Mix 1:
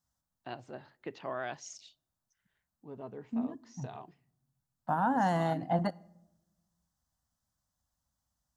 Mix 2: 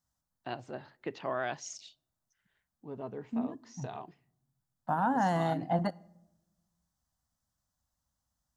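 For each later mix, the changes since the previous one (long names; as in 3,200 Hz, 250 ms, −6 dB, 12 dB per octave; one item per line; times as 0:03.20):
first voice +3.5 dB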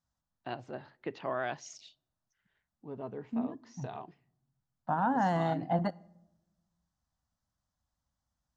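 master: add high-frequency loss of the air 77 metres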